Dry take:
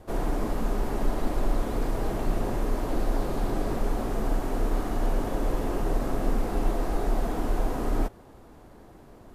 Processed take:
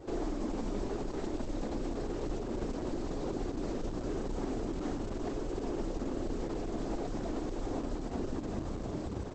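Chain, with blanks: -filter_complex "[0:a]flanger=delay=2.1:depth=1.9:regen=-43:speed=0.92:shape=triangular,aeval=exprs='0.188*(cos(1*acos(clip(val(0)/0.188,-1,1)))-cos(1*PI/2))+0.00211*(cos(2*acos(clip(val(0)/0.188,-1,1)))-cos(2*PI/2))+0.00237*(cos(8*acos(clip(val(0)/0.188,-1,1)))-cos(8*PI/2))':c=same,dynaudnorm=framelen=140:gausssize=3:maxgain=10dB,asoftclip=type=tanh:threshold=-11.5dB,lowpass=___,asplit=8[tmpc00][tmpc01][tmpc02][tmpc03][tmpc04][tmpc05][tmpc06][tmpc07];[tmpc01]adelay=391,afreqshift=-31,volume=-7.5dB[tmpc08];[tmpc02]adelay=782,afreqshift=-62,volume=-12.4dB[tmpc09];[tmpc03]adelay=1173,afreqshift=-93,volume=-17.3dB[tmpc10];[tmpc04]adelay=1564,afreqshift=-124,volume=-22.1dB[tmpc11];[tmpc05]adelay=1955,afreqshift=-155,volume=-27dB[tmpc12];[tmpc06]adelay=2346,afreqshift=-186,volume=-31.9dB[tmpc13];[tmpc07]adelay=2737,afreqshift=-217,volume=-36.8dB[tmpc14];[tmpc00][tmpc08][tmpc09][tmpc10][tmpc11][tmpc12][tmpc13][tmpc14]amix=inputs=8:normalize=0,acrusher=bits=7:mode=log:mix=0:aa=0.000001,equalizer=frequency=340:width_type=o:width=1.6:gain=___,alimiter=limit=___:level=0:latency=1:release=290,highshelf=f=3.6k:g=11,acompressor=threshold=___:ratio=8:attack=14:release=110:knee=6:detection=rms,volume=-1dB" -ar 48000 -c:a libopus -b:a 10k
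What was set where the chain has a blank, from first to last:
6.5k, 10.5, -15.5dB, -31dB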